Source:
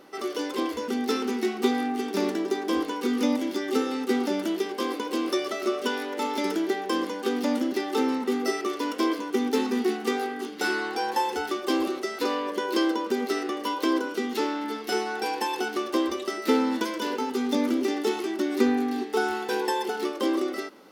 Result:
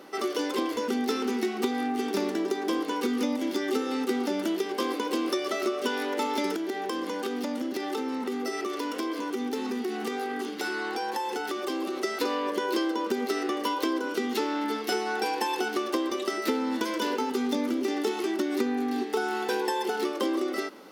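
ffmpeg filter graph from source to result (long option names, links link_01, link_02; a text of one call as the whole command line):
ffmpeg -i in.wav -filter_complex "[0:a]asettb=1/sr,asplit=3[link_01][link_02][link_03];[link_01]atrim=end=6.564[link_04];[link_02]atrim=start=6.56:end=12.03,asetpts=PTS-STARTPTS,afade=type=in:duration=0.004:curve=qsin,afade=type=out:start_time=5.466:duration=0.004:curve=qsin,acompressor=threshold=-31dB:ratio=5:attack=3.2:release=140:knee=1:detection=peak,highpass=62[link_05];[link_03]atrim=start=12.026[link_06];[link_04][link_05]acrossfade=duration=0.004:curve1=hsin:curve2=qsin[link_07];[link_07][link_06]acrossfade=duration=0.004:curve1=qsin:curve2=hsin,highpass=140,acompressor=threshold=-28dB:ratio=6,volume=3.5dB" out.wav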